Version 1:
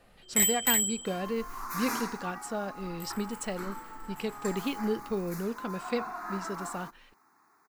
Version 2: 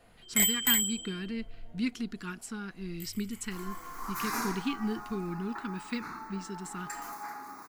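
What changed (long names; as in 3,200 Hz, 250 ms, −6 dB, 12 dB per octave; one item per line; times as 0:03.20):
speech: add Chebyshev band-stop filter 330–1,200 Hz, order 2
first sound: add EQ curve with evenly spaced ripples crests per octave 1.8, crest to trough 8 dB
second sound: entry +2.45 s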